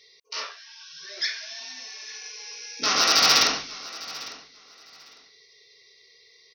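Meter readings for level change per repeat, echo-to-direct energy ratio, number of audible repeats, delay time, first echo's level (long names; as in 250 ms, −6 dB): −14.0 dB, −18.5 dB, 2, 852 ms, −18.5 dB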